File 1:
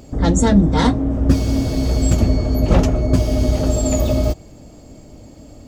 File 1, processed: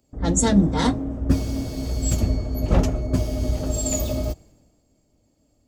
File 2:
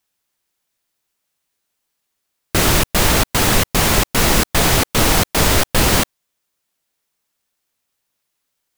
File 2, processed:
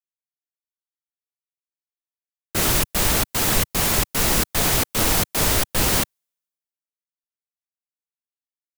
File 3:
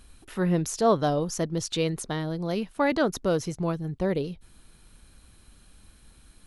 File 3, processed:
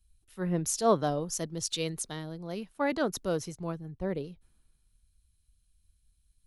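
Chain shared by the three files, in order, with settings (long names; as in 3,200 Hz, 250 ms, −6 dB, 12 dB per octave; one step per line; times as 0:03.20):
high-shelf EQ 6,600 Hz +7 dB
multiband upward and downward expander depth 70%
level −7 dB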